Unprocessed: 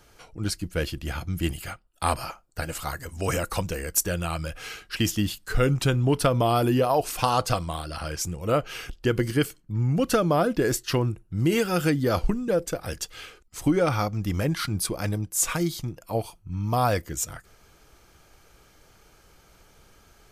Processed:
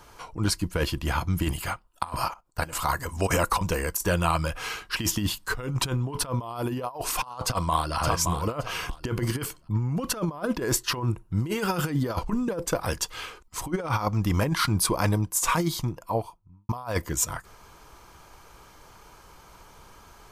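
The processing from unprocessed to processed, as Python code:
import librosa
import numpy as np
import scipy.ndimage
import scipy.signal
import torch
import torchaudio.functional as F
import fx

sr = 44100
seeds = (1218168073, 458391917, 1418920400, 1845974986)

y = fx.level_steps(x, sr, step_db=15, at=(2.28, 2.73))
y = fx.echo_throw(y, sr, start_s=7.42, length_s=0.55, ms=570, feedback_pct=20, wet_db=-7.5)
y = fx.studio_fade_out(y, sr, start_s=15.74, length_s=0.95)
y = fx.peak_eq(y, sr, hz=1000.0, db=13.5, octaves=0.41)
y = fx.over_compress(y, sr, threshold_db=-25.0, ratio=-0.5)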